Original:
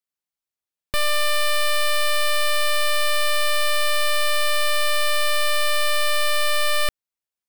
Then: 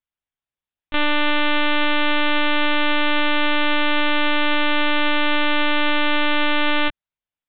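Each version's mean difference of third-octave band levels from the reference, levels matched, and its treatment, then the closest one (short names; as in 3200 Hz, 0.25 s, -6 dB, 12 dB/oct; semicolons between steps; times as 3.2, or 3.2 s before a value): 18.5 dB: LPC vocoder at 8 kHz pitch kept; gain +1.5 dB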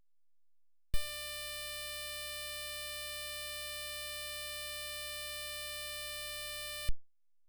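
5.0 dB: passive tone stack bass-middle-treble 10-0-1; gain +5 dB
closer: second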